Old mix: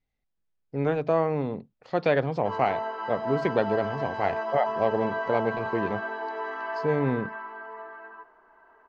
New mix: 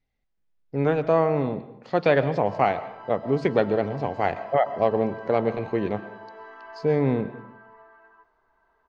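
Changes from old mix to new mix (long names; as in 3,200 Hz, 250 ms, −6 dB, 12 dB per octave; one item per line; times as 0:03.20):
background −11.0 dB
reverb: on, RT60 0.80 s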